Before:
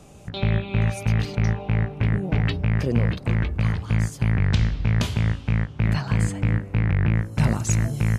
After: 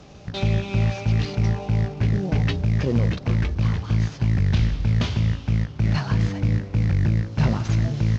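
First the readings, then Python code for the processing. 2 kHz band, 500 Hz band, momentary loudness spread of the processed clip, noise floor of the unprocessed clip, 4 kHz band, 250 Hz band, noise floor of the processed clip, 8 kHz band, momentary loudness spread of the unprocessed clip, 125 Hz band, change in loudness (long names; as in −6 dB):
−3.0 dB, +0.5 dB, 3 LU, −40 dBFS, +1.0 dB, +0.5 dB, −38 dBFS, can't be measured, 3 LU, +1.0 dB, +0.5 dB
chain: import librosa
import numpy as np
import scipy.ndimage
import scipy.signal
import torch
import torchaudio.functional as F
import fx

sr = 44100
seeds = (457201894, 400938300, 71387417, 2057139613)

y = fx.cvsd(x, sr, bps=32000)
y = fx.cheby_harmonics(y, sr, harmonics=(5,), levels_db=(-24,), full_scale_db=-8.0)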